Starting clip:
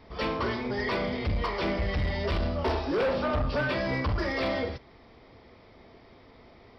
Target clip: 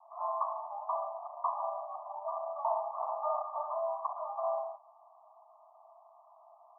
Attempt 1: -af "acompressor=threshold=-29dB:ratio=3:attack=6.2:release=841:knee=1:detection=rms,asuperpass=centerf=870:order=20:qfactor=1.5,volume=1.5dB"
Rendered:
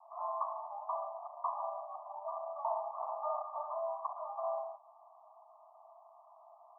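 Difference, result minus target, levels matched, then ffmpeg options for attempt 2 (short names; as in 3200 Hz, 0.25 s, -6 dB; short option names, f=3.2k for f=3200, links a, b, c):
compressor: peak gain reduction +4 dB
-af "asuperpass=centerf=870:order=20:qfactor=1.5,volume=1.5dB"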